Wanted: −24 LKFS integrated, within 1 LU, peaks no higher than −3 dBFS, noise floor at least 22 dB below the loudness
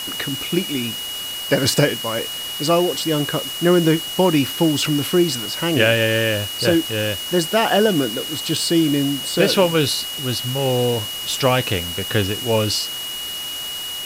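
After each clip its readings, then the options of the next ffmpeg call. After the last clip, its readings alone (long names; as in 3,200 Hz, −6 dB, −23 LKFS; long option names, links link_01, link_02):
interfering tone 2,900 Hz; level of the tone −27 dBFS; background noise floor −29 dBFS; target noise floor −41 dBFS; integrated loudness −19.0 LKFS; sample peak −2.5 dBFS; target loudness −24.0 LKFS
→ -af "bandreject=frequency=2900:width=30"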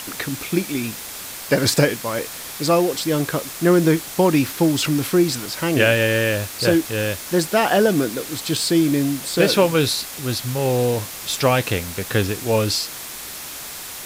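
interfering tone none found; background noise floor −34 dBFS; target noise floor −42 dBFS
→ -af "afftdn=noise_reduction=8:noise_floor=-34"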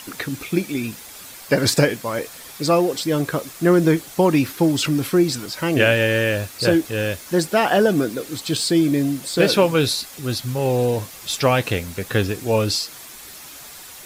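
background noise floor −40 dBFS; target noise floor −42 dBFS
→ -af "afftdn=noise_reduction=6:noise_floor=-40"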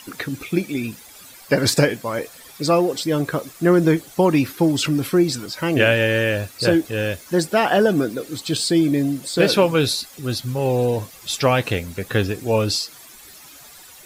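background noise floor −44 dBFS; integrated loudness −20.0 LKFS; sample peak −3.5 dBFS; target loudness −24.0 LKFS
→ -af "volume=-4dB"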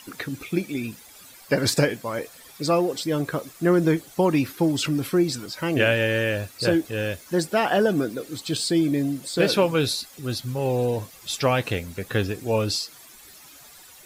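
integrated loudness −24.0 LKFS; sample peak −7.5 dBFS; background noise floor −48 dBFS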